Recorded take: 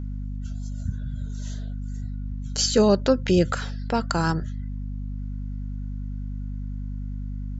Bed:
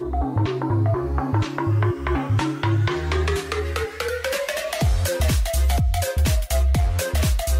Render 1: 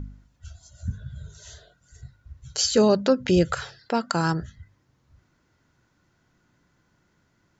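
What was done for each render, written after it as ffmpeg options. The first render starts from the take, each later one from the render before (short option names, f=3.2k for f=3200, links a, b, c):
-af "bandreject=f=50:t=h:w=4,bandreject=f=100:t=h:w=4,bandreject=f=150:t=h:w=4,bandreject=f=200:t=h:w=4,bandreject=f=250:t=h:w=4"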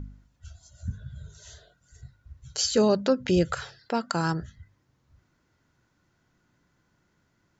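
-af "volume=-3dB"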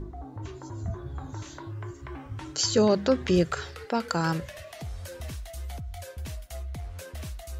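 -filter_complex "[1:a]volume=-17.5dB[a];[0:a][a]amix=inputs=2:normalize=0"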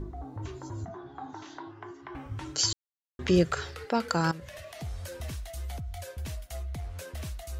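-filter_complex "[0:a]asettb=1/sr,asplit=3[a][b][c];[a]atrim=end=0.854[d];[b]atrim=start=0.85:end=2.15,asetpts=PTS-STARTPTS,afade=t=in:d=0.004:c=qsin,afade=t=out:st=1.296:d=0.004:c=qsin,highpass=280,equalizer=f=280:t=q:w=4:g=3,equalizer=f=550:t=q:w=4:g=-10,equalizer=f=770:t=q:w=4:g=9,equalizer=f=2.4k:t=q:w=4:g=-4,equalizer=f=4.2k:t=q:w=4:g=-4,lowpass=f=5.2k:w=0.5412,lowpass=f=5.2k:w=1.3066[e];[c]atrim=start=2.146[f];[d][e]acrossfade=d=0.004:c1=hsin:c2=qsin[g];[g][f]acrossfade=d=0.004:c1=qsin:c2=hsin,asettb=1/sr,asplit=3[h][i][j];[h]atrim=end=4.314[k];[i]atrim=start=4.31:end=4.82,asetpts=PTS-STARTPTS,afade=t=in:d=0.004:c=qsin,afade=t=out:st=0.506:d=0.004:c=qsin,acompressor=threshold=-39dB:ratio=6:attack=3.2:release=140:knee=1:detection=peak[l];[j]atrim=start=4.816[m];[k][l]acrossfade=d=0.004:c1=hsin:c2=qsin[n];[n][m]acrossfade=d=0.004:c1=qsin:c2=hsin,asplit=3[o][p][q];[o]atrim=end=2.73,asetpts=PTS-STARTPTS,afade=t=out:st=2.726:d=0.004:c=hsin[r];[p]atrim=start=2.73:end=3.19,asetpts=PTS-STARTPTS,volume=0[s];[q]atrim=start=3.19,asetpts=PTS-STARTPTS,afade=t=in:d=0.004:c=hsin[t];[r][s][t]concat=n=3:v=0:a=1"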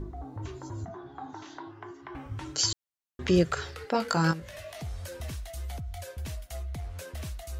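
-filter_complex "[0:a]asettb=1/sr,asplit=3[a][b][c];[a]atrim=end=3.924[d];[b]atrim=start=3.92:end=4.82,asetpts=PTS-STARTPTS,afade=t=in:d=0.004:c=qsin,afade=t=out:st=0.896:d=0.004:c=qsin,asplit=2[e][f];[f]adelay=19,volume=-4.5dB[g];[e][g]amix=inputs=2:normalize=0,atrim=end_sample=39690[h];[c]atrim=start=4.816[i];[d][h]acrossfade=d=0.004:c1=hsin:c2=qsin[j];[j][i]acrossfade=d=0.004:c1=qsin:c2=hsin"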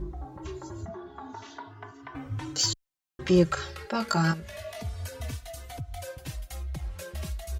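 -filter_complex "[0:a]asplit=2[a][b];[b]asoftclip=type=tanh:threshold=-22dB,volume=-3dB[c];[a][c]amix=inputs=2:normalize=0,asplit=2[d][e];[e]adelay=3.3,afreqshift=0.3[f];[d][f]amix=inputs=2:normalize=1"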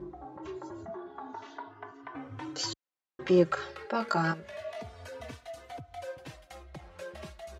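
-af "highpass=440,aemphasis=mode=reproduction:type=riaa"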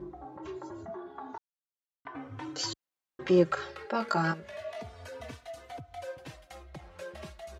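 -filter_complex "[0:a]asplit=3[a][b][c];[a]atrim=end=1.38,asetpts=PTS-STARTPTS,afade=t=out:st=1.376:d=0.004:c=hsin[d];[b]atrim=start=1.38:end=2.05,asetpts=PTS-STARTPTS,volume=0[e];[c]atrim=start=2.05,asetpts=PTS-STARTPTS,afade=t=in:d=0.004:c=hsin[f];[d][e][f]concat=n=3:v=0:a=1"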